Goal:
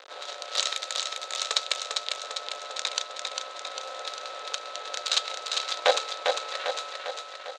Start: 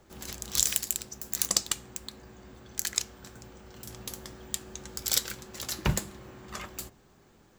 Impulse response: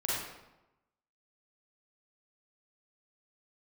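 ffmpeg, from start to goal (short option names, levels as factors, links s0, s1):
-filter_complex "[0:a]asplit=2[s0][s1];[s1]acompressor=threshold=0.00562:ratio=6,volume=1[s2];[s0][s2]amix=inputs=2:normalize=0,asoftclip=type=tanh:threshold=0.15,acrusher=bits=3:mode=log:mix=0:aa=0.000001,aeval=exprs='val(0)+0.00224*(sin(2*PI*50*n/s)+sin(2*PI*2*50*n/s)/2+sin(2*PI*3*50*n/s)/3+sin(2*PI*4*50*n/s)/4+sin(2*PI*5*50*n/s)/5)':c=same,aeval=exprs='val(0)*sin(2*PI*650*n/s)':c=same,acrusher=bits=5:dc=4:mix=0:aa=0.000001,highpass=f=490:w=0.5412,highpass=f=490:w=1.3066,equalizer=f=530:t=q:w=4:g=6,equalizer=f=870:t=q:w=4:g=-4,equalizer=f=1400:t=q:w=4:g=3,equalizer=f=3800:t=q:w=4:g=9,equalizer=f=5400:t=q:w=4:g=-4,lowpass=f=6000:w=0.5412,lowpass=f=6000:w=1.3066,asplit=2[s3][s4];[s4]aecho=0:1:400|800|1200|1600|2000|2400|2800|3200:0.596|0.345|0.2|0.116|0.0674|0.0391|0.0227|0.0132[s5];[s3][s5]amix=inputs=2:normalize=0,volume=2.24"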